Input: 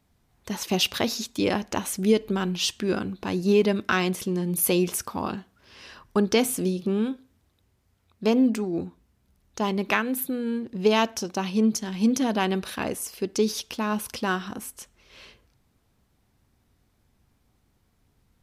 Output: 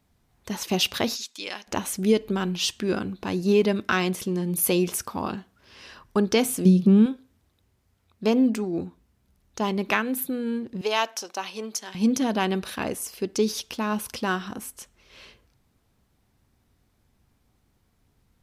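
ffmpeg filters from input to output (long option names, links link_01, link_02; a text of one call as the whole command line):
ffmpeg -i in.wav -filter_complex "[0:a]asplit=3[link_01][link_02][link_03];[link_01]afade=type=out:start_time=1.15:duration=0.02[link_04];[link_02]bandpass=frequency=4500:width_type=q:width=0.58,afade=type=in:start_time=1.15:duration=0.02,afade=type=out:start_time=1.66:duration=0.02[link_05];[link_03]afade=type=in:start_time=1.66:duration=0.02[link_06];[link_04][link_05][link_06]amix=inputs=3:normalize=0,asettb=1/sr,asplit=3[link_07][link_08][link_09];[link_07]atrim=end=6.654[link_10];[link_08]atrim=start=6.65:end=7.06,asetpts=PTS-STARTPTS,afade=type=in:duration=0.004:curve=qsin,afade=type=out:start_time=0.406:duration=0.004:curve=qsin,equalizer=frequency=180:width=1.5:gain=12[link_11];[link_09]atrim=start=7.056[link_12];[link_10][link_11]acrossfade=duration=0.004:curve1=hsin:curve2=qsin[link_13];[link_13][link_12]acrossfade=duration=0.004:curve1=qsin:curve2=hsin,asettb=1/sr,asplit=3[link_14][link_15][link_16];[link_14]atrim=end=10.814[link_17];[link_15]atrim=start=10.81:end=11.95,asetpts=PTS-STARTPTS,afade=type=in:duration=0.004:curve=qsin,afade=type=out:start_time=1.136:duration=0.004:curve=qsin,highpass=600[link_18];[link_16]atrim=start=11.946[link_19];[link_17][link_18]acrossfade=duration=0.004:curve1=hsin:curve2=qsin[link_20];[link_20][link_19]acrossfade=duration=0.004:curve1=qsin:curve2=hsin" out.wav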